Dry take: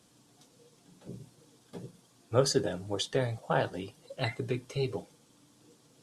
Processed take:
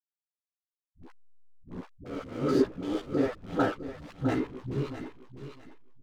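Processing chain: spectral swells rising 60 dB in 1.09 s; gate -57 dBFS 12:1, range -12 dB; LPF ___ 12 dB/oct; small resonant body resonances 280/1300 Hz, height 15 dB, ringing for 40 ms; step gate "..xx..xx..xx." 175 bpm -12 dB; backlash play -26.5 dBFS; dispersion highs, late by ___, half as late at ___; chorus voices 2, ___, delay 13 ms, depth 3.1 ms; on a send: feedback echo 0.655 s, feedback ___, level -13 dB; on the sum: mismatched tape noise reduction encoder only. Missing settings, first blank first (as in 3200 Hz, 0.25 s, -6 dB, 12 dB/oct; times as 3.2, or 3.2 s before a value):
2900 Hz, 83 ms, 330 Hz, 0.56 Hz, 16%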